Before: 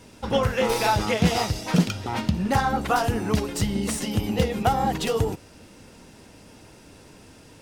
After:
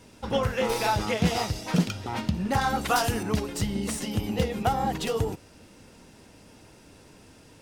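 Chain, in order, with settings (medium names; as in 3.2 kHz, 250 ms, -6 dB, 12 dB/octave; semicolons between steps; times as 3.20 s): 2.61–3.23 s: treble shelf 2.2 kHz +9.5 dB; trim -3.5 dB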